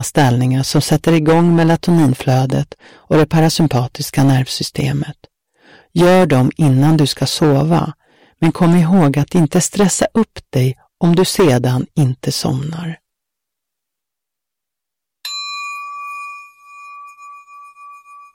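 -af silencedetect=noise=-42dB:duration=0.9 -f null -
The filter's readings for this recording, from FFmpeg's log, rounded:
silence_start: 12.97
silence_end: 15.25 | silence_duration: 2.28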